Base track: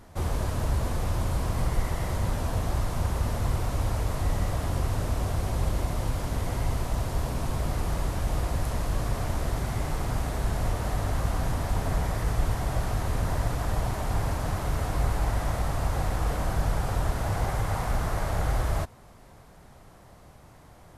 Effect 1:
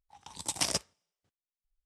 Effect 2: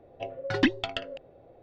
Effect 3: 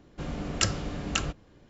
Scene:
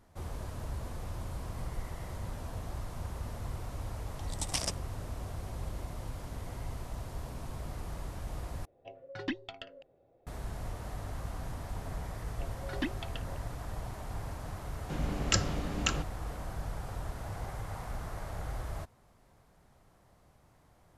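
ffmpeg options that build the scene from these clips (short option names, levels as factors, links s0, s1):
-filter_complex "[2:a]asplit=2[s0][s1];[0:a]volume=0.251,asplit=2[s2][s3];[s2]atrim=end=8.654[s4];[s0]atrim=end=1.62,asetpts=PTS-STARTPTS,volume=0.237[s5];[s3]atrim=start=10.266[s6];[1:a]atrim=end=1.85,asetpts=PTS-STARTPTS,volume=0.631,afade=t=in:d=0.004:c=hsin,afade=t=out:st=1.846:d=0.004:c=hsin,adelay=173313S[s7];[s1]atrim=end=1.62,asetpts=PTS-STARTPTS,volume=0.251,afade=t=in:d=0.004:c=hsin,afade=t=out:st=1.616:d=0.004:c=hsin,adelay=12190[s8];[3:a]atrim=end=1.69,asetpts=PTS-STARTPTS,volume=0.794,afade=t=in:d=0.004:c=hsin,afade=t=out:st=1.686:d=0.004:c=hsin,adelay=14710[s9];[s4][s5]acrossfade=d=0.004:c1=hsin:c2=hsin[s10];[s10][s6]acrossfade=d=0.004:c1=hsin:c2=hsin[s11];[s11][s7][s8][s9]amix=inputs=4:normalize=0"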